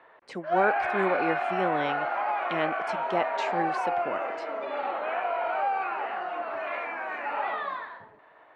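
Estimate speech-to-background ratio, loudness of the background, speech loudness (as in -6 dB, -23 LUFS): -1.5 dB, -30.0 LUFS, -31.5 LUFS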